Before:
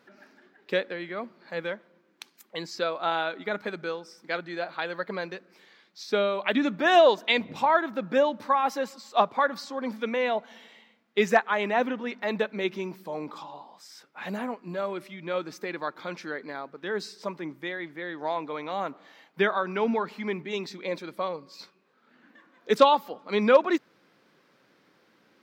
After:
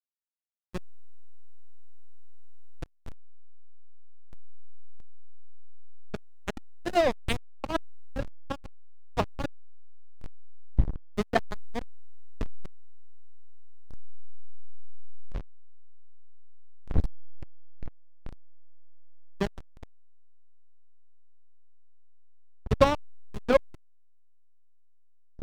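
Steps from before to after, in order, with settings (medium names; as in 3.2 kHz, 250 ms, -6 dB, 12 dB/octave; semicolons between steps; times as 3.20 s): wind noise 110 Hz -32 dBFS; hysteresis with a dead band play -9.5 dBFS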